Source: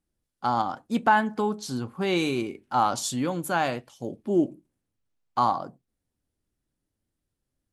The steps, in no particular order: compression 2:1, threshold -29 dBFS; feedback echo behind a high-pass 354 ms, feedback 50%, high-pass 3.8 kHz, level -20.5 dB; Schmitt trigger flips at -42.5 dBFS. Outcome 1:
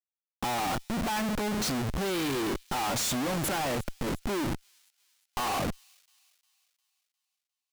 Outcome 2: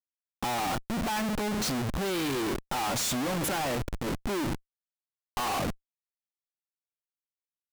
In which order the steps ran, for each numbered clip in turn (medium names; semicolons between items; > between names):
Schmitt trigger > compression > feedback echo behind a high-pass; feedback echo behind a high-pass > Schmitt trigger > compression